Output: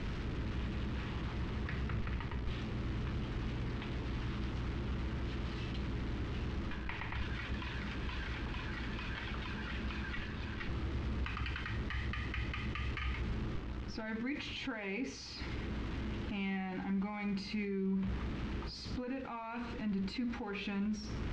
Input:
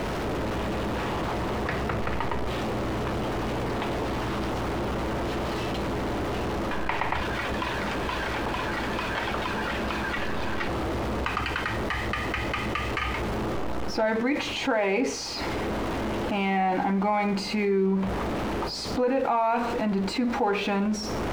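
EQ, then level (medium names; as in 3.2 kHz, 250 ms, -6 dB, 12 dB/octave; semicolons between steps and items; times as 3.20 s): distance through air 160 m; amplifier tone stack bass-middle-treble 6-0-2; +8.5 dB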